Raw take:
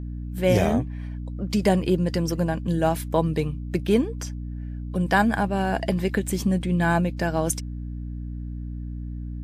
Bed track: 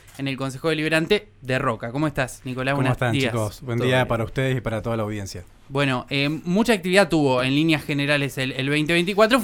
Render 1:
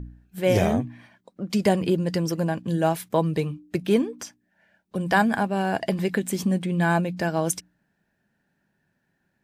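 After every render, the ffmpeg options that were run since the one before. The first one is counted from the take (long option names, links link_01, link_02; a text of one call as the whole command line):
ffmpeg -i in.wav -af "bandreject=frequency=60:width_type=h:width=4,bandreject=frequency=120:width_type=h:width=4,bandreject=frequency=180:width_type=h:width=4,bandreject=frequency=240:width_type=h:width=4,bandreject=frequency=300:width_type=h:width=4" out.wav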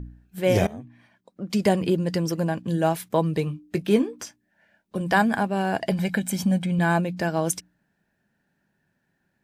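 ffmpeg -i in.wav -filter_complex "[0:a]asettb=1/sr,asplit=3[link_01][link_02][link_03];[link_01]atrim=end=3.454[link_04];[link_02]atrim=start=3.45:end=5.01,asetpts=PTS-STARTPTS,afade=type=in:duration=0.004:curve=qsin,afade=type=out:start_time=1.556:duration=0.004:curve=qsin,asplit=2[link_05][link_06];[link_06]adelay=19,volume=-10dB[link_07];[link_05][link_07]amix=inputs=2:normalize=0,atrim=end_sample=68796[link_08];[link_03]atrim=start=5.006[link_09];[link_04][link_08]acrossfade=duration=0.004:curve1=hsin:curve2=qsin[link_10];[link_10][link_09]acrossfade=duration=0.004:curve1=qsin:curve2=hsin,asettb=1/sr,asplit=3[link_11][link_12][link_13];[link_11]atrim=end=5.914[link_14];[link_12]atrim=start=5.91:end=6.79,asetpts=PTS-STARTPTS,afade=type=in:duration=0.004:curve=qsin,afade=type=out:start_time=0.876:duration=0.004:curve=qsin,aecho=1:1:1.3:0.65,atrim=end_sample=38808[link_15];[link_13]atrim=start=6.786[link_16];[link_14][link_15]acrossfade=duration=0.004:curve1=hsin:curve2=qsin[link_17];[link_17][link_16]acrossfade=duration=0.004:curve1=qsin:curve2=hsin,asplit=2[link_18][link_19];[link_18]atrim=end=0.67,asetpts=PTS-STARTPTS,afade=type=out:start_time=0.666:duration=0.004:curve=hsin:silence=0.0944061[link_20];[link_19]atrim=start=0.67,asetpts=PTS-STARTPTS,afade=type=in:duration=0.92:silence=0.0944061[link_21];[link_20][link_21]concat=n=2:v=0:a=1" out.wav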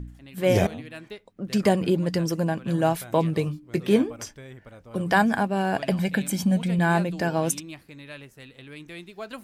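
ffmpeg -i in.wav -i bed.wav -filter_complex "[1:a]volume=-21dB[link_01];[0:a][link_01]amix=inputs=2:normalize=0" out.wav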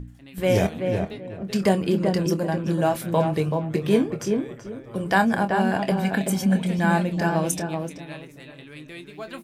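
ffmpeg -i in.wav -filter_complex "[0:a]asplit=2[link_01][link_02];[link_02]adelay=26,volume=-10.5dB[link_03];[link_01][link_03]amix=inputs=2:normalize=0,asplit=2[link_04][link_05];[link_05]adelay=381,lowpass=frequency=1400:poles=1,volume=-4dB,asplit=2[link_06][link_07];[link_07]adelay=381,lowpass=frequency=1400:poles=1,volume=0.25,asplit=2[link_08][link_09];[link_09]adelay=381,lowpass=frequency=1400:poles=1,volume=0.25[link_10];[link_06][link_08][link_10]amix=inputs=3:normalize=0[link_11];[link_04][link_11]amix=inputs=2:normalize=0" out.wav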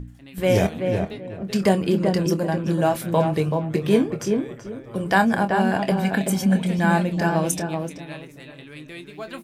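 ffmpeg -i in.wav -af "volume=1.5dB" out.wav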